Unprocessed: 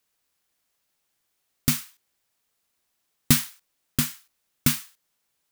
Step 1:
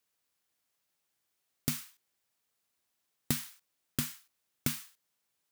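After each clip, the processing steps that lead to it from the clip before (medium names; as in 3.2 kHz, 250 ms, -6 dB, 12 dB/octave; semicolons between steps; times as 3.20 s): high-pass 64 Hz; compression 6:1, threshold -22 dBFS, peak gain reduction 9.5 dB; trim -5.5 dB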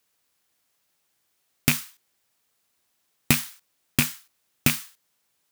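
rattle on loud lows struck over -37 dBFS, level -20 dBFS; in parallel at -12 dB: bit crusher 6-bit; on the sum: trim +8.5 dB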